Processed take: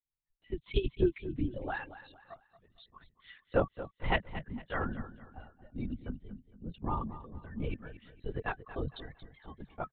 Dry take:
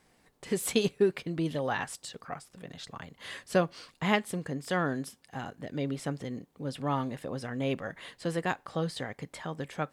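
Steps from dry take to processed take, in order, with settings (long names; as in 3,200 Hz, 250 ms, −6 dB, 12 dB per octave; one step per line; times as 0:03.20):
spectral dynamics exaggerated over time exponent 2
frequency shifter −31 Hz
linear-prediction vocoder at 8 kHz whisper
on a send: repeating echo 229 ms, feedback 35%, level −14 dB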